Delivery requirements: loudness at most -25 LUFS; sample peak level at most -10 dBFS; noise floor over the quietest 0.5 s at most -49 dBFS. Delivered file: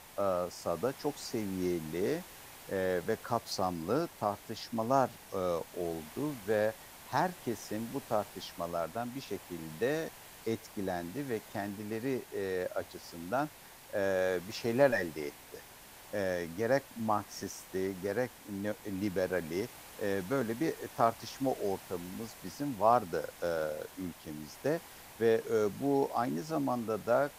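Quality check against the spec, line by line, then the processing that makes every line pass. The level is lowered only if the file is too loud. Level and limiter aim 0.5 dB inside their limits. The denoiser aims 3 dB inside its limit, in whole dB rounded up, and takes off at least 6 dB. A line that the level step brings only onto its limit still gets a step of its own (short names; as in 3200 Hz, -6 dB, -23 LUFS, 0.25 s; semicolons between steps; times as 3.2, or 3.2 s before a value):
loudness -34.5 LUFS: OK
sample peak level -13.0 dBFS: OK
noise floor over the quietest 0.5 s -53 dBFS: OK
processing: none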